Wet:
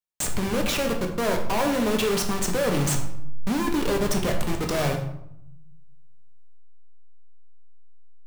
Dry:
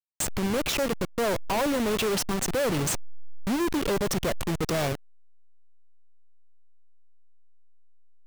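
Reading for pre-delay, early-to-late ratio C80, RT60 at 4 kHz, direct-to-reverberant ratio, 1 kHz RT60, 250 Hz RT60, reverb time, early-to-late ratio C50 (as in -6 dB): 4 ms, 10.0 dB, 0.50 s, 2.0 dB, 0.75 s, 1.0 s, 0.80 s, 7.5 dB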